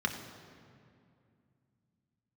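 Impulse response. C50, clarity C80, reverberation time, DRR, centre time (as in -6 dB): 7.5 dB, 8.5 dB, 2.4 s, 3.0 dB, 34 ms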